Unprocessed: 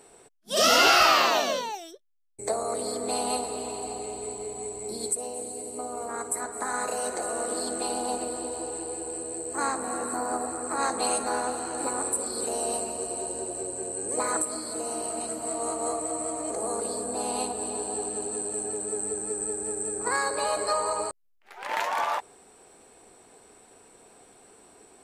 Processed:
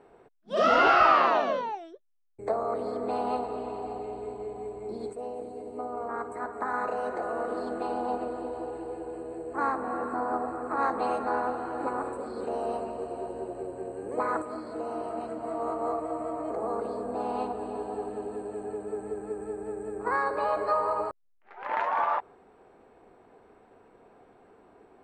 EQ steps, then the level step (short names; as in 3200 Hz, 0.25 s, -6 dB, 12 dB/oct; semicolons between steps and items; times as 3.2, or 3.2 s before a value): LPF 1600 Hz 12 dB/oct; dynamic EQ 1200 Hz, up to +3 dB, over -43 dBFS, Q 2; 0.0 dB